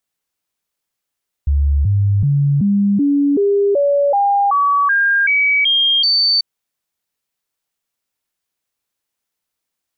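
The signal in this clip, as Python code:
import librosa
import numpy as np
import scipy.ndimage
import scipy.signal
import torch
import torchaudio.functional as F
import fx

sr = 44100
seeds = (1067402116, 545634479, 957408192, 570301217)

y = fx.stepped_sweep(sr, from_hz=71.1, direction='up', per_octave=2, tones=13, dwell_s=0.38, gap_s=0.0, level_db=-11.0)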